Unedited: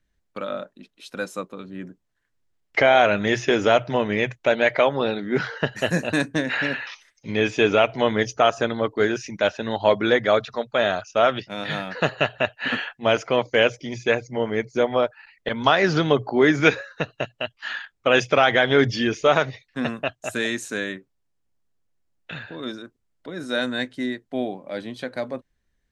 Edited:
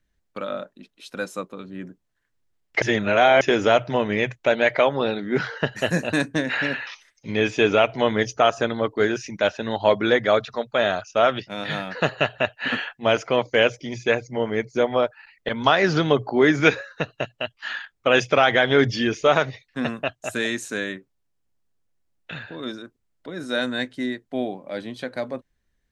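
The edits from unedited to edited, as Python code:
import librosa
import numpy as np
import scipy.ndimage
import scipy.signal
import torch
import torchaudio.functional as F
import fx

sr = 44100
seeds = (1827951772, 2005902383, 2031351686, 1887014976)

y = fx.edit(x, sr, fx.reverse_span(start_s=2.82, length_s=0.59), tone=tone)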